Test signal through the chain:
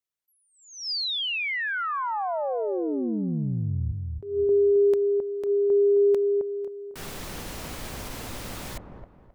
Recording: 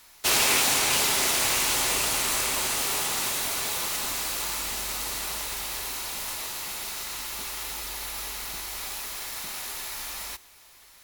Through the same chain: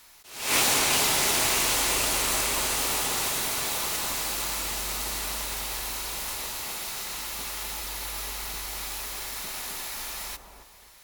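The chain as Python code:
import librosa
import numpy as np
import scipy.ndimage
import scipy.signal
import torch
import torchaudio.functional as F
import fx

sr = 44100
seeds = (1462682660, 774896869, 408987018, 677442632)

y = fx.echo_wet_lowpass(x, sr, ms=265, feedback_pct=32, hz=890.0, wet_db=-3.5)
y = fx.attack_slew(y, sr, db_per_s=100.0)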